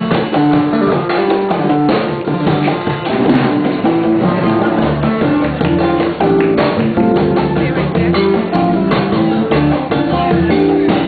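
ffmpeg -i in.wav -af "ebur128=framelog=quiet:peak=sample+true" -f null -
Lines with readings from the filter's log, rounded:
Integrated loudness:
  I:         -13.2 LUFS
  Threshold: -23.2 LUFS
Loudness range:
  LRA:         0.8 LU
  Threshold: -33.3 LUFS
  LRA low:   -13.8 LUFS
  LRA high:  -13.0 LUFS
Sample peak:
  Peak:       -2.6 dBFS
True peak:
  Peak:       -2.6 dBFS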